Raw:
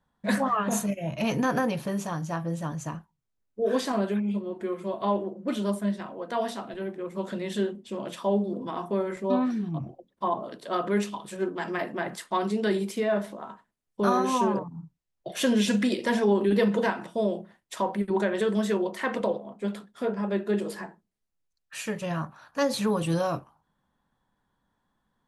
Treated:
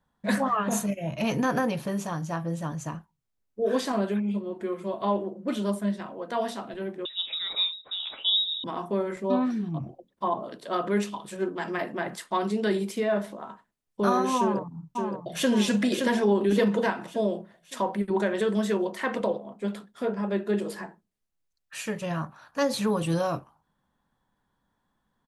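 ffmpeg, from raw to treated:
ffmpeg -i in.wav -filter_complex "[0:a]asettb=1/sr,asplit=3[link_01][link_02][link_03];[link_01]atrim=end=7.054[link_04];[link_02]atrim=start=7.05:end=8.64,asetpts=PTS-STARTPTS,afade=type=in:duration=0.004:curve=qsin,afade=type=out:start_time=1.586:duration=0.004:curve=qsin,lowpass=frequency=3400:width_type=q:width=0.5098,lowpass=frequency=3400:width_type=q:width=0.6013,lowpass=frequency=3400:width_type=q:width=0.9,lowpass=frequency=3400:width_type=q:width=2.563,afreqshift=-4000[link_05];[link_03]atrim=start=8.636[link_06];[link_04][link_05]acrossfade=duration=0.004:curve1=hsin:curve2=qsin[link_07];[link_07][link_06]acrossfade=duration=0.004:curve1=qsin:curve2=hsin,asplit=2[link_08][link_09];[link_09]afade=type=in:start_time=14.38:duration=0.01,afade=type=out:start_time=15.5:duration=0.01,aecho=0:1:570|1140|1710|2280|2850|3420:0.562341|0.253054|0.113874|0.0512434|0.0230595|0.0103768[link_10];[link_08][link_10]amix=inputs=2:normalize=0" out.wav

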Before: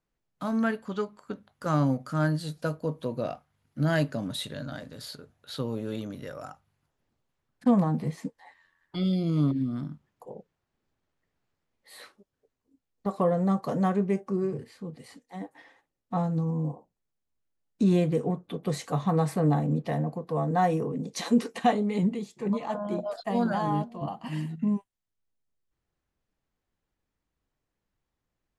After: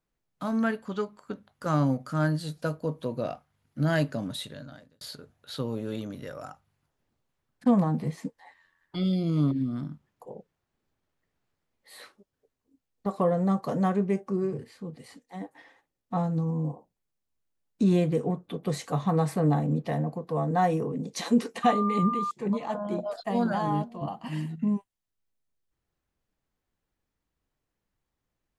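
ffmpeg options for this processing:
ffmpeg -i in.wav -filter_complex "[0:a]asettb=1/sr,asplit=3[link_01][link_02][link_03];[link_01]atrim=end=21.634[link_04];[link_02]atrim=start=21.63:end=22.31,asetpts=PTS-STARTPTS,afade=type=in:duration=0.004:curve=qsin,afade=type=out:start_time=0.676:duration=0.004:curve=qsin,aeval=exprs='val(0)+0.0447*sin(2*PI*1200*n/s)':channel_layout=same[link_05];[link_03]atrim=start=22.306[link_06];[link_04][link_05]acrossfade=duration=0.004:curve1=hsin:curve2=qsin[link_07];[link_07][link_06]acrossfade=duration=0.004:curve1=qsin:curve2=hsin,asplit=2[link_08][link_09];[link_08]atrim=end=5.01,asetpts=PTS-STARTPTS,afade=type=out:start_time=4.22:duration=0.79[link_10];[link_09]atrim=start=5.01,asetpts=PTS-STARTPTS,afade=type=in:duration=0.004:curve=hsin[link_11];[link_10][link_11]concat=n=2:v=0:a=1" out.wav

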